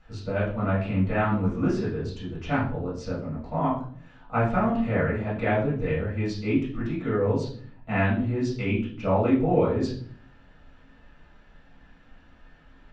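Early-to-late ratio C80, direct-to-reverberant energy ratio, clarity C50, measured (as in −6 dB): 9.5 dB, −9.5 dB, 5.0 dB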